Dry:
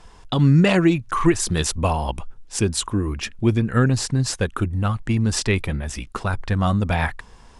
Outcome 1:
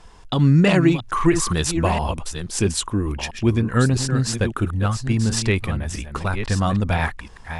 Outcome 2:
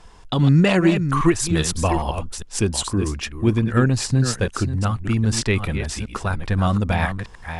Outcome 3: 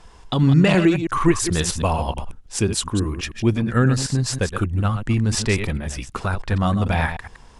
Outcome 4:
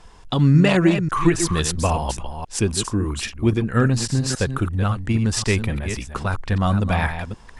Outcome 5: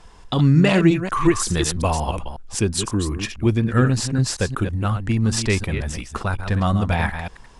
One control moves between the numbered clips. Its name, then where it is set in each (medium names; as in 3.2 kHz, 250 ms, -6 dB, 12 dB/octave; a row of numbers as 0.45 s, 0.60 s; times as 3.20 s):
chunks repeated in reverse, time: 662 ms, 404 ms, 107 ms, 272 ms, 182 ms